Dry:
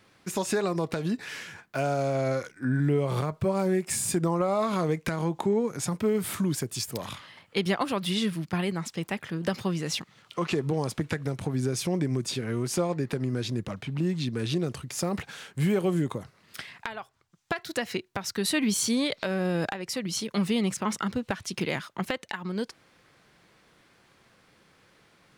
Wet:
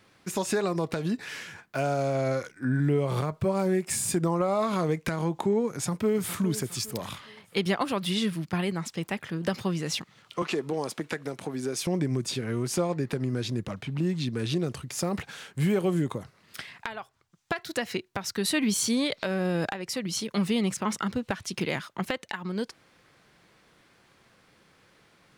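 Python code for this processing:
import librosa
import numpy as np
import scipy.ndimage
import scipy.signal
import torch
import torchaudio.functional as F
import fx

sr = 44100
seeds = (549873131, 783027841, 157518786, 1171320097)

y = fx.echo_throw(x, sr, start_s=5.73, length_s=0.66, ms=410, feedback_pct=40, wet_db=-13.5)
y = fx.highpass(y, sr, hz=260.0, slope=12, at=(10.42, 11.87))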